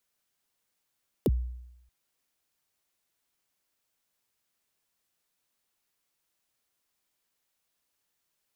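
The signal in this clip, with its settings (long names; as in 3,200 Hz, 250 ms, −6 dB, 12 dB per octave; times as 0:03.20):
synth kick length 0.63 s, from 530 Hz, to 61 Hz, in 39 ms, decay 0.87 s, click on, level −18.5 dB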